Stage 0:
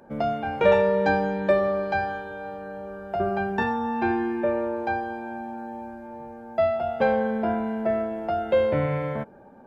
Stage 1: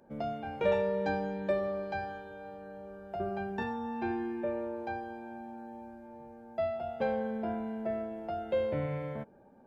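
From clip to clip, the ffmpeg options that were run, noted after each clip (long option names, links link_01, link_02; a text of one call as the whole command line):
ffmpeg -i in.wav -af "equalizer=frequency=1300:width_type=o:width=1.5:gain=-4.5,volume=-8.5dB" out.wav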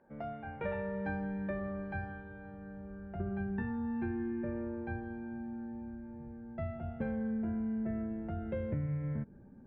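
ffmpeg -i in.wav -af "asubboost=boost=11:cutoff=210,acompressor=threshold=-26dB:ratio=6,lowpass=frequency=1800:width_type=q:width=2.1,volume=-6.5dB" out.wav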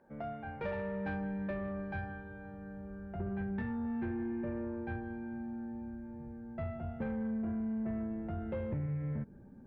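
ffmpeg -i in.wav -af "asoftclip=type=tanh:threshold=-30.5dB,volume=1dB" out.wav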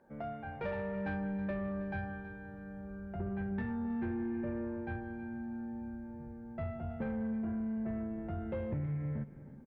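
ffmpeg -i in.wav -af "aecho=1:1:321|642|963:0.158|0.0555|0.0194" out.wav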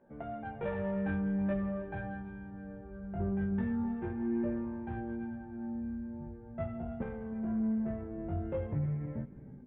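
ffmpeg -i in.wav -filter_complex "[0:a]flanger=delay=16:depth=5.1:speed=0.42,asplit=2[link_01][link_02];[link_02]adynamicsmooth=sensitivity=6.5:basefreq=1100,volume=-1dB[link_03];[link_01][link_03]amix=inputs=2:normalize=0,aresample=8000,aresample=44100" out.wav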